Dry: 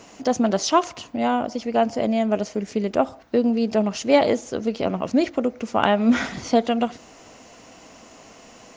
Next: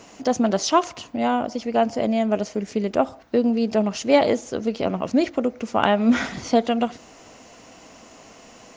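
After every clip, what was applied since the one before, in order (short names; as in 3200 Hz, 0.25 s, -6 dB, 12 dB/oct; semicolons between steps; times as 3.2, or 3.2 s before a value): nothing audible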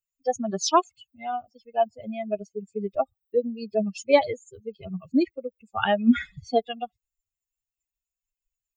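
per-bin expansion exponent 3; gain +2 dB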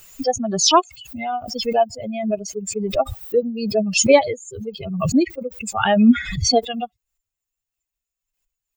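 backwards sustainer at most 56 dB/s; gain +4.5 dB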